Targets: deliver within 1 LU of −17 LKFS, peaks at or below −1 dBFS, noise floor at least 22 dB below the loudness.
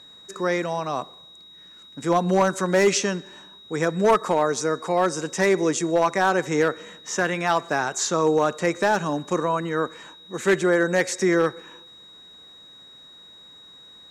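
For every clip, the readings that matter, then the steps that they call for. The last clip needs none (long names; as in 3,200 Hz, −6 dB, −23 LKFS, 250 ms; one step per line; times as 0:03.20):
share of clipped samples 0.7%; peaks flattened at −12.0 dBFS; interfering tone 3,800 Hz; level of the tone −45 dBFS; integrated loudness −23.0 LKFS; sample peak −12.0 dBFS; target loudness −17.0 LKFS
→ clipped peaks rebuilt −12 dBFS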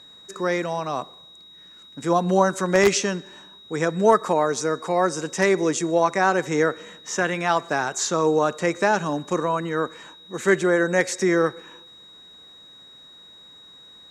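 share of clipped samples 0.0%; interfering tone 3,800 Hz; level of the tone −45 dBFS
→ notch filter 3,800 Hz, Q 30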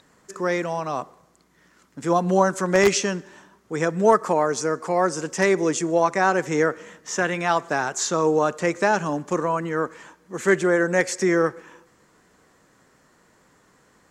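interfering tone none found; integrated loudness −22.5 LKFS; sample peak −3.0 dBFS; target loudness −17.0 LKFS
→ level +5.5 dB
brickwall limiter −1 dBFS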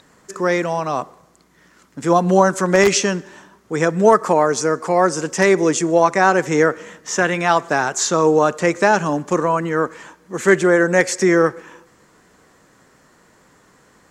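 integrated loudness −17.0 LKFS; sample peak −1.0 dBFS; background noise floor −54 dBFS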